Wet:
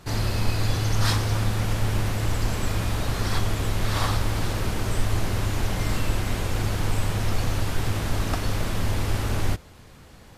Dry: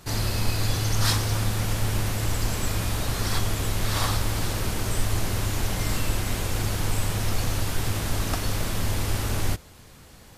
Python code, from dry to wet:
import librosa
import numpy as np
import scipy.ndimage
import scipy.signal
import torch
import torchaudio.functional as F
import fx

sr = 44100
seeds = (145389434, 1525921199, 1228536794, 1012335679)

y = fx.high_shelf(x, sr, hz=4900.0, db=-8.5)
y = y * librosa.db_to_amplitude(1.5)